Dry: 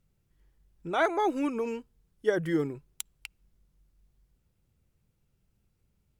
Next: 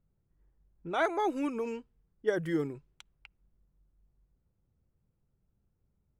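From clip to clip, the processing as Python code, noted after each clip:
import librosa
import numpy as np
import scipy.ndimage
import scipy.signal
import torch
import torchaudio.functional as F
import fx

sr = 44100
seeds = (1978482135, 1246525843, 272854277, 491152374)

y = fx.env_lowpass(x, sr, base_hz=1200.0, full_db=-27.0)
y = y * librosa.db_to_amplitude(-3.0)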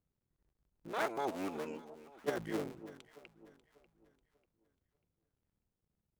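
y = fx.cycle_switch(x, sr, every=3, mode='muted')
y = fx.low_shelf(y, sr, hz=100.0, db=-8.0)
y = fx.echo_alternate(y, sr, ms=296, hz=920.0, feedback_pct=57, wet_db=-12.5)
y = y * librosa.db_to_amplitude(-5.0)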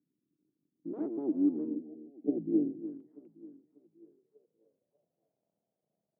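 y = fx.spec_box(x, sr, start_s=1.75, length_s=1.09, low_hz=800.0, high_hz=2100.0, gain_db=-27)
y = scipy.signal.sosfilt(scipy.signal.butter(4, 150.0, 'highpass', fs=sr, output='sos'), y)
y = fx.filter_sweep_lowpass(y, sr, from_hz=300.0, to_hz=650.0, start_s=3.77, end_s=5.1, q=6.8)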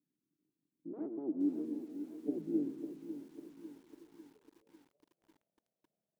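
y = fx.echo_feedback(x, sr, ms=129, feedback_pct=47, wet_db=-18.0)
y = fx.echo_crushed(y, sr, ms=548, feedback_pct=55, bits=9, wet_db=-11.0)
y = y * librosa.db_to_amplitude(-5.5)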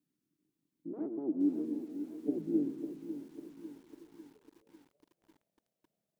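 y = fx.low_shelf(x, sr, hz=190.0, db=3.5)
y = y * librosa.db_to_amplitude(2.0)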